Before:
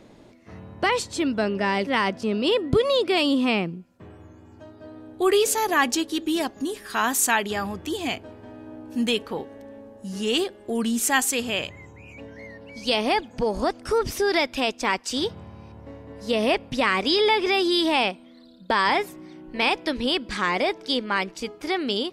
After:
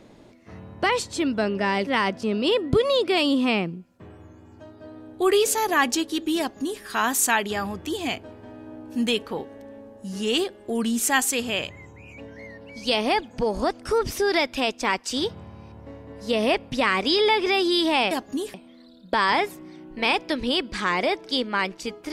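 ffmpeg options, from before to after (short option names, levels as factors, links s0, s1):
-filter_complex "[0:a]asplit=3[s0][s1][s2];[s0]atrim=end=18.112[s3];[s1]atrim=start=6.388:end=6.822[s4];[s2]atrim=start=18.108[s5];[s3][s4]acrossfade=d=0.004:c1=hsin:c2=hsin[s6];[s6][s5]acrossfade=d=0.004:c1=hsin:c2=hsin"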